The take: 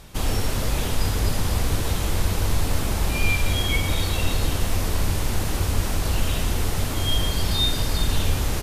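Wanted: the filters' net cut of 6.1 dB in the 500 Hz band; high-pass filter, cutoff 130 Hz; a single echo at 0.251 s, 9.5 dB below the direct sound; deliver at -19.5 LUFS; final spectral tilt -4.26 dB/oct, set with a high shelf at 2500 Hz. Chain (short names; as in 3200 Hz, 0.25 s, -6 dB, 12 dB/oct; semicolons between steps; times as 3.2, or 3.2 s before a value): HPF 130 Hz; bell 500 Hz -7.5 dB; high shelf 2500 Hz -6.5 dB; echo 0.251 s -9.5 dB; gain +10.5 dB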